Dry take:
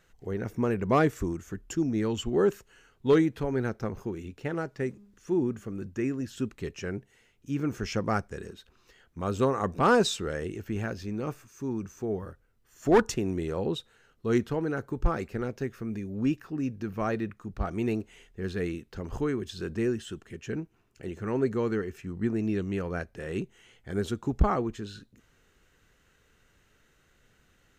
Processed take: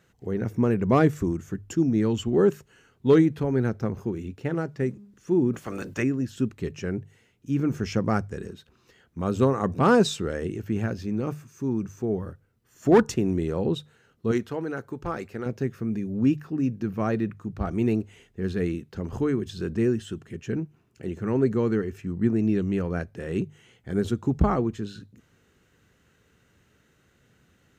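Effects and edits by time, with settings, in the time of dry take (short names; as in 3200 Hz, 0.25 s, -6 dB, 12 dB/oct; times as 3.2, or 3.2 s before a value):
5.53–6.02 spectral limiter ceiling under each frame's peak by 25 dB
14.31–15.46 low shelf 300 Hz -12 dB
whole clip: HPF 96 Hz; low shelf 300 Hz +10 dB; notches 50/100/150 Hz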